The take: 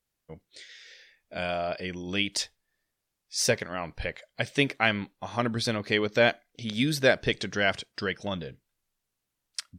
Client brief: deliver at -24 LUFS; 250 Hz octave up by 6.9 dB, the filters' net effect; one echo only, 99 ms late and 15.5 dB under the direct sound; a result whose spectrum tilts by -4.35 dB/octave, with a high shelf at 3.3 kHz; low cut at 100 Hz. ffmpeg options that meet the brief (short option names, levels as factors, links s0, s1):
-af "highpass=100,equalizer=f=250:t=o:g=8.5,highshelf=f=3300:g=-7.5,aecho=1:1:99:0.168,volume=1.33"